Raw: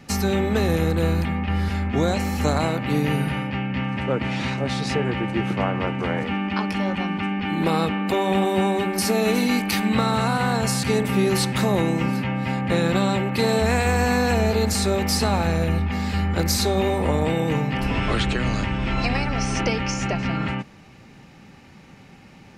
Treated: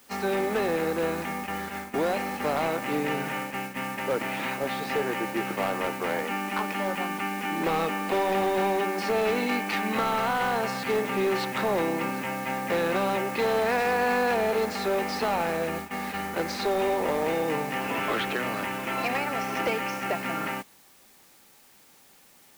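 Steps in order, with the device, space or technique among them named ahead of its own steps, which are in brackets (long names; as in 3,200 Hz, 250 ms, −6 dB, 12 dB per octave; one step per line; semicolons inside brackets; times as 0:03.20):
aircraft radio (band-pass filter 370–2,500 Hz; hard clipping −20.5 dBFS, distortion −15 dB; white noise bed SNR 18 dB; noise gate −33 dBFS, range −11 dB)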